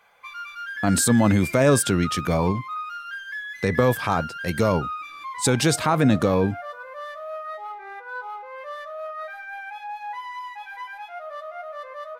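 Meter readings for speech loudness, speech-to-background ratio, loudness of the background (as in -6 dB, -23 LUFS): -21.5 LUFS, 12.5 dB, -34.0 LUFS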